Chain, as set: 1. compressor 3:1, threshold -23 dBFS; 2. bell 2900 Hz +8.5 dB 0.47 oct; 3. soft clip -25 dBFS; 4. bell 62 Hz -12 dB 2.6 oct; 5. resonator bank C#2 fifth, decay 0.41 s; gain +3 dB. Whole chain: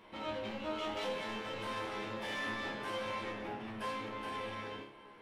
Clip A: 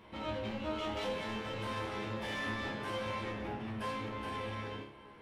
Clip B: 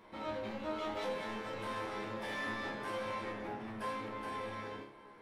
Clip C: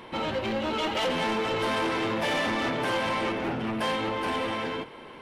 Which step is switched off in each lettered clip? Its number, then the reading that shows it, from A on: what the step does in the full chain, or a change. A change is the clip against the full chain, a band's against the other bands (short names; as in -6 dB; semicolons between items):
4, 125 Hz band +8.0 dB; 2, 4 kHz band -5.0 dB; 5, 250 Hz band +1.5 dB